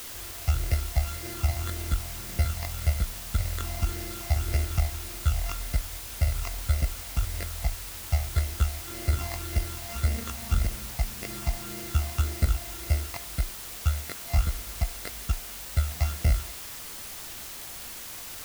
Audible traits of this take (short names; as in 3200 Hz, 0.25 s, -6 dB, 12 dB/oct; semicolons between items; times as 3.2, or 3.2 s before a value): a buzz of ramps at a fixed pitch in blocks of 64 samples; phasing stages 8, 1.8 Hz, lowest notch 420–1100 Hz; a quantiser's noise floor 6-bit, dither triangular